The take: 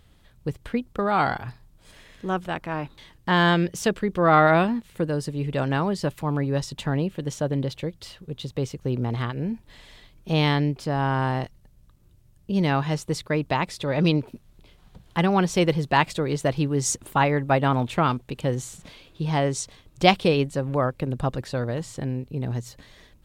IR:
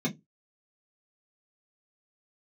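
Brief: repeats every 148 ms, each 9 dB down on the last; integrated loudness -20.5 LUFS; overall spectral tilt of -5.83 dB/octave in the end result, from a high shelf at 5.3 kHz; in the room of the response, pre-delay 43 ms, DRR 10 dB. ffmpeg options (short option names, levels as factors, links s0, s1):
-filter_complex "[0:a]highshelf=f=5300:g=-8.5,aecho=1:1:148|296|444|592:0.355|0.124|0.0435|0.0152,asplit=2[s0][s1];[1:a]atrim=start_sample=2205,adelay=43[s2];[s1][s2]afir=irnorm=-1:irlink=0,volume=0.15[s3];[s0][s3]amix=inputs=2:normalize=0,volume=1.12"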